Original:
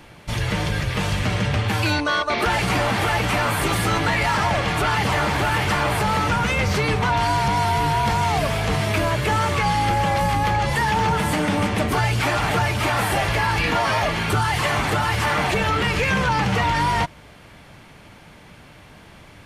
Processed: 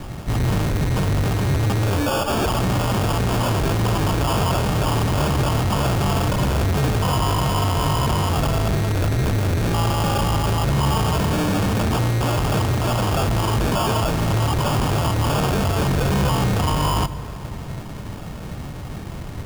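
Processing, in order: 8.73–9.74 minimum comb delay 0.49 ms; low shelf 220 Hz +11.5 dB; in parallel at +2.5 dB: compressor, threshold -25 dBFS, peak gain reduction 15 dB; on the sum: sample-and-hold 22×; hard clip -18.5 dBFS, distortion -6 dB; on a send at -12 dB: reverb RT60 2.8 s, pre-delay 4 ms

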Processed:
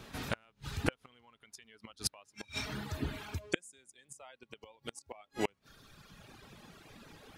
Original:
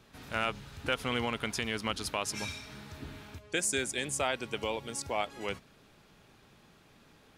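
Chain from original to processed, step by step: flipped gate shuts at -24 dBFS, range -30 dB; reverb removal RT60 1.9 s; gain +9 dB

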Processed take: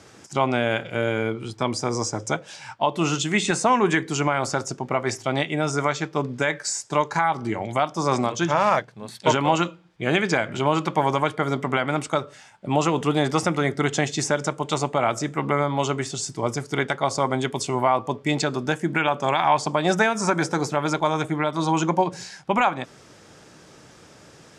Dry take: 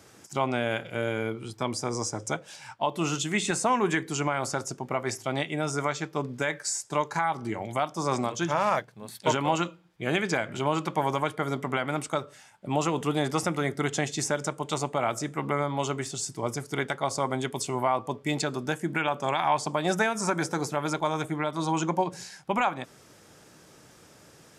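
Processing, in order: LPF 7400 Hz 12 dB/oct; gain +5.5 dB

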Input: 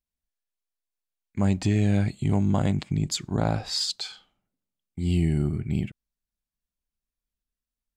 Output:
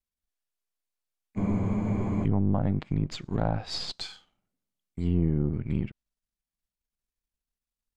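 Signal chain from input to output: half-wave gain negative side -7 dB; treble ducked by the level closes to 1000 Hz, closed at -20 dBFS; spectral freeze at 1.4, 0.83 s

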